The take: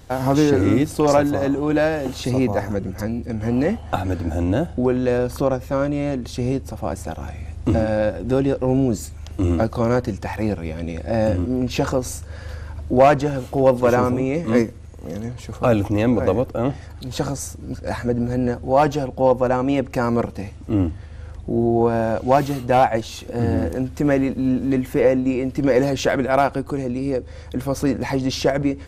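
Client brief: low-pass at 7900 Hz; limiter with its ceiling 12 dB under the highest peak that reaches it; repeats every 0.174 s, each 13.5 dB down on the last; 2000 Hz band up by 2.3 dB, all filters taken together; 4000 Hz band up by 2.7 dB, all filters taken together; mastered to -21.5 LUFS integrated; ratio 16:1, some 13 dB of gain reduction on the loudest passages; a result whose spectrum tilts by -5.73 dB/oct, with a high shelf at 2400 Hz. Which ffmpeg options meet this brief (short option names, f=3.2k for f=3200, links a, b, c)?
-af "lowpass=7.9k,equalizer=f=2k:t=o:g=4.5,highshelf=f=2.4k:g=-7.5,equalizer=f=4k:t=o:g=9,acompressor=threshold=-22dB:ratio=16,alimiter=limit=-21.5dB:level=0:latency=1,aecho=1:1:174|348:0.211|0.0444,volume=9.5dB"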